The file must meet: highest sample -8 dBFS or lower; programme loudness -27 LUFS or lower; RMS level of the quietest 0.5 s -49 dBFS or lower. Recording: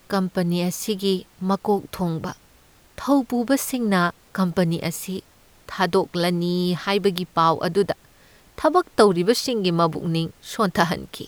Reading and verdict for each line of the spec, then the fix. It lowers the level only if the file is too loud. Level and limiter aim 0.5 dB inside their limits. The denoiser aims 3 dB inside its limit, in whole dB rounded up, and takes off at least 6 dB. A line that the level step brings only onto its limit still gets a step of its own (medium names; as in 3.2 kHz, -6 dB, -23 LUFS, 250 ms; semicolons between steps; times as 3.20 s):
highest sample -3.5 dBFS: fail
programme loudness -22.5 LUFS: fail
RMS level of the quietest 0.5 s -54 dBFS: pass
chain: trim -5 dB